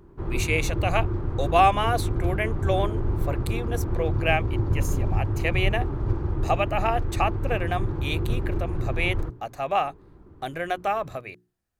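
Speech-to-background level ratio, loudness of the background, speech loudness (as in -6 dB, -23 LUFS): 1.0 dB, -28.5 LUFS, -27.5 LUFS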